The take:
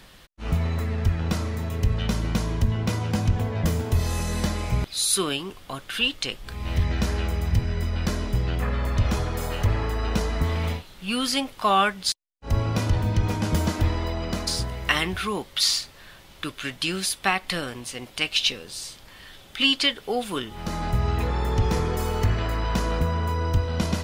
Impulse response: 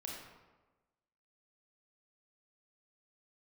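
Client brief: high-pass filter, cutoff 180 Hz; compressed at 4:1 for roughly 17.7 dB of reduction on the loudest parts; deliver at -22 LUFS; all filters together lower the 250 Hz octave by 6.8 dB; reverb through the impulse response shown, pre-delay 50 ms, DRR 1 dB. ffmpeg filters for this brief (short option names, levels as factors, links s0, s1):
-filter_complex "[0:a]highpass=180,equalizer=f=250:t=o:g=-7,acompressor=threshold=0.0112:ratio=4,asplit=2[s0][s1];[1:a]atrim=start_sample=2205,adelay=50[s2];[s1][s2]afir=irnorm=-1:irlink=0,volume=1.06[s3];[s0][s3]amix=inputs=2:normalize=0,volume=6.31"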